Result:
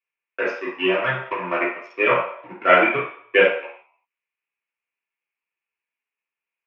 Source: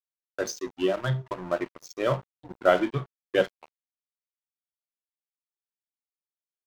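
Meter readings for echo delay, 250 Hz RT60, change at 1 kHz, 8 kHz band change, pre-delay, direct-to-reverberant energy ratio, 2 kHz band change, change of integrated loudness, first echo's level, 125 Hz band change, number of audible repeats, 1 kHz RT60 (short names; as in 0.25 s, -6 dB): none, 0.50 s, +9.5 dB, n/a, 3 ms, -5.5 dB, +14.5 dB, +8.0 dB, none, -6.0 dB, none, 0.65 s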